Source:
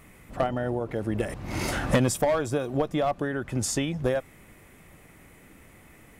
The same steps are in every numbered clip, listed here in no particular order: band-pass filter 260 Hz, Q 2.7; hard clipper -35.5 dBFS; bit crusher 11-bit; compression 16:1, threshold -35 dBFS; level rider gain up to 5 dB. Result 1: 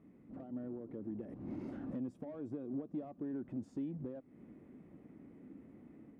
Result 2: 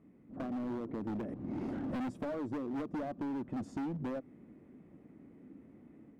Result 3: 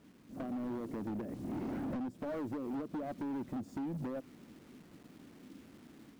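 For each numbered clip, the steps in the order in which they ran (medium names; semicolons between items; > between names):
compression > hard clipper > level rider > bit crusher > band-pass filter; bit crusher > band-pass filter > hard clipper > level rider > compression; band-pass filter > bit crusher > compression > level rider > hard clipper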